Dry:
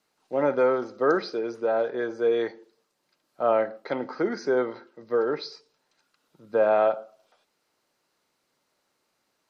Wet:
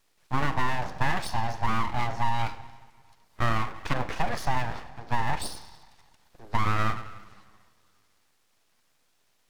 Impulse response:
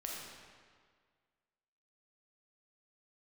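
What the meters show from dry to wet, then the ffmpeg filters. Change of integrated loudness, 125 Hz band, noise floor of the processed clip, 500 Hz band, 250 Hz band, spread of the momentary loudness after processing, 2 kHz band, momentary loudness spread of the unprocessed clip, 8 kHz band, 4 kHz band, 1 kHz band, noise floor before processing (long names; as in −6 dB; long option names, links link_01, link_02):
−4.0 dB, +16.0 dB, −68 dBFS, −16.0 dB, −4.5 dB, 10 LU, +3.0 dB, 10 LU, can't be measured, +4.5 dB, +3.0 dB, −75 dBFS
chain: -filter_complex "[0:a]acompressor=threshold=-26dB:ratio=6,asplit=2[link_01][link_02];[1:a]atrim=start_sample=2205[link_03];[link_02][link_03]afir=irnorm=-1:irlink=0,volume=-10.5dB[link_04];[link_01][link_04]amix=inputs=2:normalize=0,aeval=exprs='abs(val(0))':channel_layout=same,volume=5dB"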